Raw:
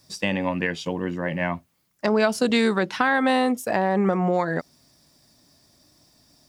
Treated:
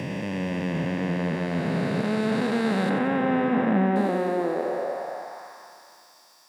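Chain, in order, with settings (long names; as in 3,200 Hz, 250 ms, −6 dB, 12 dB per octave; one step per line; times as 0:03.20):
spectrum smeared in time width 1,490 ms
in parallel at −2 dB: downward compressor, threshold −42 dBFS, peak gain reduction 17.5 dB
0:02.90–0:03.96: on the sum: Savitzky-Golay smoothing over 25 samples
echo with a time of its own for lows and highs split 410 Hz, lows 322 ms, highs 91 ms, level −8.5 dB
high-pass filter sweep 120 Hz → 940 Hz, 0:03.26–0:05.52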